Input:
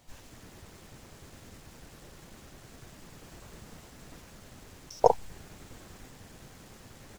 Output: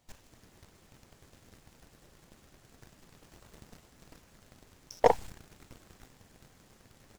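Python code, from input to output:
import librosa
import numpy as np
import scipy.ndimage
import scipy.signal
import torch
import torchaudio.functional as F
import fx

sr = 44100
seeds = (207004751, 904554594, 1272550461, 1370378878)

y = fx.leveller(x, sr, passes=2)
y = F.gain(torch.from_numpy(y), -5.5).numpy()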